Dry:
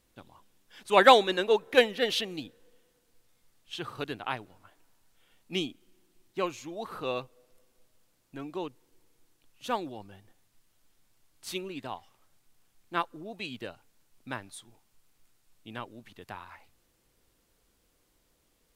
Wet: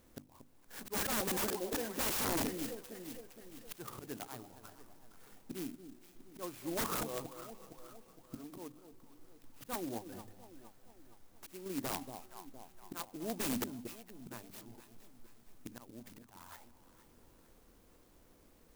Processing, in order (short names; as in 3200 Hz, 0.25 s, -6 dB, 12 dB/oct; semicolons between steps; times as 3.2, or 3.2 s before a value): in parallel at -10 dB: soft clip -11.5 dBFS, distortion -14 dB; on the sum: auto swell 0.689 s; high shelf 4000 Hz -7.5 dB; notches 50/100/150/200/250/300 Hz; 9.98–11.66 compressor 3:1, threshold -53 dBFS, peak gain reduction 7 dB; on a send: echo with dull and thin repeats by turns 0.232 s, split 830 Hz, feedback 68%, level -10.5 dB; on the sum: wrapped overs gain 34 dB; bell 250 Hz +4 dB 0.64 oct; clock jitter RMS 0.096 ms; gain +5 dB